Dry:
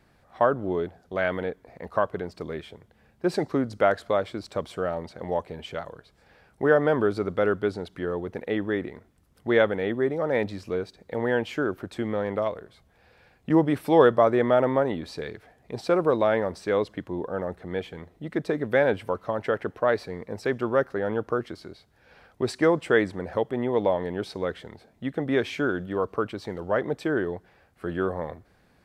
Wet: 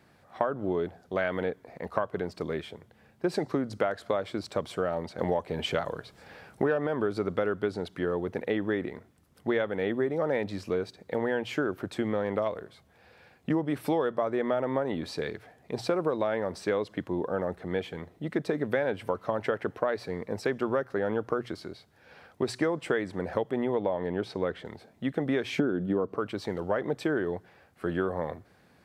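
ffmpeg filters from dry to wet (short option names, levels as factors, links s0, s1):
-filter_complex "[0:a]asettb=1/sr,asplit=3[s0][s1][s2];[s0]atrim=end=5.184[s3];[s1]atrim=start=5.18:end=6.87,asetpts=PTS-STARTPTS,afade=t=in:d=0.004:c=qsin,afade=t=out:st=1.686:d=0.004:c=qsin,acontrast=78[s4];[s2]atrim=start=6.866[s5];[s3][s4]acrossfade=d=0.004:c1=hsin:c2=qsin[s6];[s6][s5]acrossfade=d=0.004:c1=qsin:c2=hsin,asettb=1/sr,asplit=3[s7][s8][s9];[s7]atrim=end=23.754[s10];[s8]atrim=start=23.75:end=24.65,asetpts=PTS-STARTPTS,afade=t=in:d=0.004:c=qsin,afade=t=out:st=0.896:d=0.004:c=qsin,highshelf=f=4300:g=-10[s11];[s9]atrim=start=24.646[s12];[s10][s11]acrossfade=d=0.004:c1=hsin:c2=qsin[s13];[s13][s12]acrossfade=d=0.004:c1=qsin:c2=hsin,asettb=1/sr,asplit=3[s14][s15][s16];[s14]atrim=end=25.584[s17];[s15]atrim=start=25.58:end=26.18,asetpts=PTS-STARTPTS,afade=t=in:d=0.004:c=qsin,afade=t=out:st=0.596:d=0.004:c=qsin,equalizer=f=240:w=0.47:g=13[s18];[s16]atrim=start=26.176[s19];[s17][s18]acrossfade=d=0.004:c1=hsin:c2=qsin[s20];[s20][s19]acrossfade=d=0.004:c1=qsin:c2=hsin,acompressor=threshold=0.0562:ratio=12,highpass=82,bandreject=f=60:t=h:w=6,bandreject=f=120:t=h:w=6,volume=1.19"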